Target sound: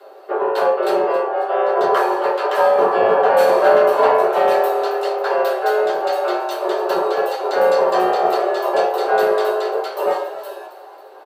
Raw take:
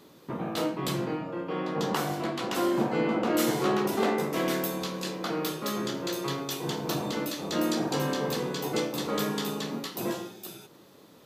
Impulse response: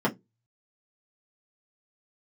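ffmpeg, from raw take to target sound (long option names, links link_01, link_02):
-filter_complex "[0:a]lowshelf=frequency=130:gain=-10.5,afreqshift=220,acrossover=split=110|600|5400[link_01][link_02][link_03][link_04];[link_02]volume=31.5dB,asoftclip=hard,volume=-31.5dB[link_05];[link_01][link_05][link_03][link_04]amix=inputs=4:normalize=0,asplit=6[link_06][link_07][link_08][link_09][link_10][link_11];[link_07]adelay=273,afreqshift=85,volume=-14.5dB[link_12];[link_08]adelay=546,afreqshift=170,volume=-20.5dB[link_13];[link_09]adelay=819,afreqshift=255,volume=-26.5dB[link_14];[link_10]adelay=1092,afreqshift=340,volume=-32.6dB[link_15];[link_11]adelay=1365,afreqshift=425,volume=-38.6dB[link_16];[link_06][link_12][link_13][link_14][link_15][link_16]amix=inputs=6:normalize=0[link_17];[1:a]atrim=start_sample=2205,asetrate=37926,aresample=44100[link_18];[link_17][link_18]afir=irnorm=-1:irlink=0,volume=-1.5dB"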